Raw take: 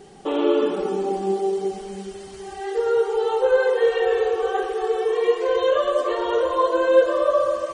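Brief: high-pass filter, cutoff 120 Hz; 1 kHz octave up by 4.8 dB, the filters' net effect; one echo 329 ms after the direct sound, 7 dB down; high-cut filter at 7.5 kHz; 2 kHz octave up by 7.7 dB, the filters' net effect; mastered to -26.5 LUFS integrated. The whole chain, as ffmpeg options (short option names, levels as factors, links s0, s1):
-af "highpass=120,lowpass=7500,equalizer=f=1000:t=o:g=3.5,equalizer=f=2000:t=o:g=9,aecho=1:1:329:0.447,volume=0.398"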